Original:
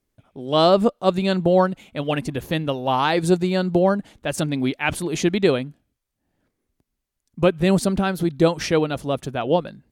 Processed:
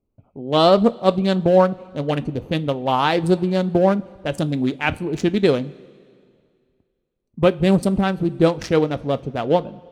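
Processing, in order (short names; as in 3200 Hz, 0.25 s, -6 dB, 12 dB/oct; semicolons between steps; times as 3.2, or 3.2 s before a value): Wiener smoothing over 25 samples; two-slope reverb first 0.21 s, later 2.2 s, from -19 dB, DRR 12 dB; gain +2 dB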